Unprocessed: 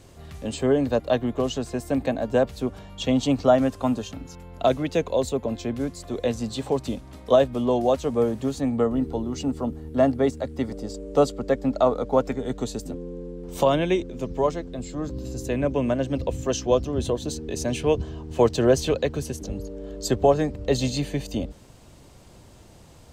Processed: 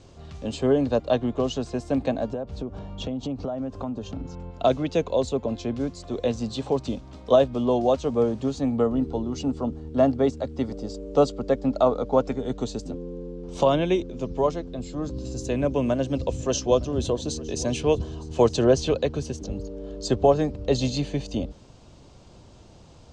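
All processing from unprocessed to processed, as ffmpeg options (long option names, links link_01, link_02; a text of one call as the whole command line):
ffmpeg -i in.wav -filter_complex "[0:a]asettb=1/sr,asplit=3[link_01][link_02][link_03];[link_01]atrim=end=2.334[link_04];[link_02]atrim=start=2.33:end=4.51,asetpts=PTS-STARTPTS,afade=type=in:duration=0.004:curve=qsin,afade=type=out:start_time=2.176:duration=0.004:curve=qsin,tiltshelf=frequency=1500:gain=6,acompressor=threshold=-27dB:ratio=8:attack=3.2:release=140:knee=1:detection=peak[link_05];[link_03]atrim=start=4.506[link_06];[link_04][link_05]acrossfade=duration=0.004:curve1=hsin:curve2=qsin[link_07];[link_07][link_06]acrossfade=duration=0.004:curve1=qsin:curve2=hsin,asettb=1/sr,asplit=3[link_08][link_09][link_10];[link_08]atrim=end=15.064[link_11];[link_09]atrim=start=15.06:end=18.64,asetpts=PTS-STARTPTS,afade=type=in:duration=0.004:curve=qsin,afade=type=out:start_time=3.576:duration=0.004:curve=qsin,highshelf=frequency=7300:gain=10.5,aecho=1:1:911:0.0891,atrim=end_sample=157878[link_12];[link_10]atrim=start=18.636[link_13];[link_11][link_12]acrossfade=duration=0.004:curve1=hsin:curve2=qsin[link_14];[link_14][link_13]acrossfade=duration=0.004:curve1=qsin:curve2=hsin,lowpass=frequency=6700:width=0.5412,lowpass=frequency=6700:width=1.3066,equalizer=frequency=1900:width_type=o:width=0.58:gain=-6" out.wav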